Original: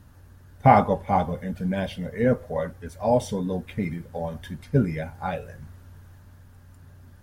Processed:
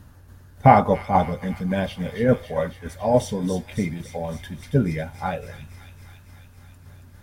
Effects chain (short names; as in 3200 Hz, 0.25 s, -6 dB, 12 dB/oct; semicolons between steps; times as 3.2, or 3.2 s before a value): tremolo saw down 3.5 Hz, depth 45%; on a send: thin delay 0.277 s, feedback 71%, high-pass 3000 Hz, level -5 dB; on the sum: gain +4.5 dB